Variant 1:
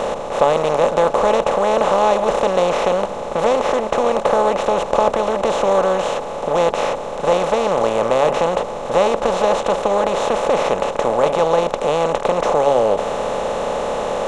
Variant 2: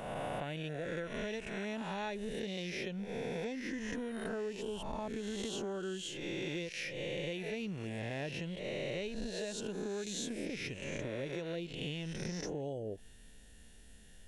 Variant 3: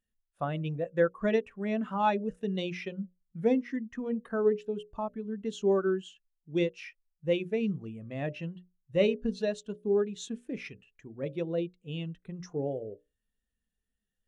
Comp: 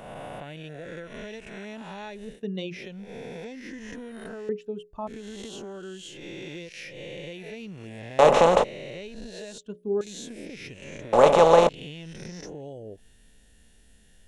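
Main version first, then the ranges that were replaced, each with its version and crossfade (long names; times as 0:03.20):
2
0:02.33–0:02.78: punch in from 3, crossfade 0.16 s
0:04.49–0:05.07: punch in from 3
0:08.19–0:08.64: punch in from 1
0:09.58–0:10.01: punch in from 3
0:11.13–0:11.69: punch in from 1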